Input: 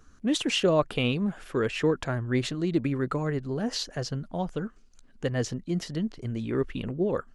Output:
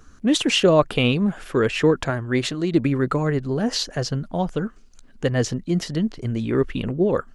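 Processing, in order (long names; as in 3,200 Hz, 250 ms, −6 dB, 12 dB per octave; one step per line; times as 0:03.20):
0:02.10–0:02.74: low-shelf EQ 200 Hz −7 dB
level +7 dB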